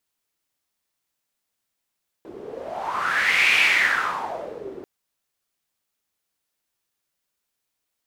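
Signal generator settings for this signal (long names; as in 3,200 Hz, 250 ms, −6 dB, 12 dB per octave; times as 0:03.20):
wind from filtered noise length 2.59 s, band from 380 Hz, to 2,400 Hz, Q 5.9, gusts 1, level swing 20 dB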